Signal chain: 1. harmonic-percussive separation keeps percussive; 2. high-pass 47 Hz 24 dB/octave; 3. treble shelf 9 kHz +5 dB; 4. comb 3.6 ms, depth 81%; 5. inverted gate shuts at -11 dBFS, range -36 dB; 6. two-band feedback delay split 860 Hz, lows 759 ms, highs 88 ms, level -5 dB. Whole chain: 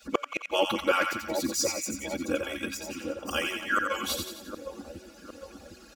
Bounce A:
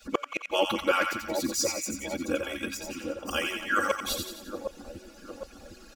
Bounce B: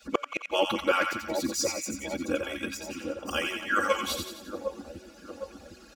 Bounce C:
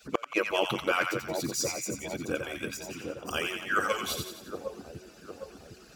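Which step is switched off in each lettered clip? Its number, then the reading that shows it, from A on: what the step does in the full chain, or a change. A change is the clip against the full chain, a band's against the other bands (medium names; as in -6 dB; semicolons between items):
2, crest factor change -2.0 dB; 3, 8 kHz band -1.5 dB; 4, 125 Hz band +6.0 dB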